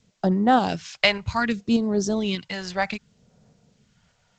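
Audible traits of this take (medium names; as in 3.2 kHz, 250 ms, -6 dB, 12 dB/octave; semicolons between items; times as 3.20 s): phasing stages 2, 0.65 Hz, lowest notch 270–2700 Hz; tremolo saw up 1.7 Hz, depth 40%; a quantiser's noise floor 12-bit, dither triangular; G.722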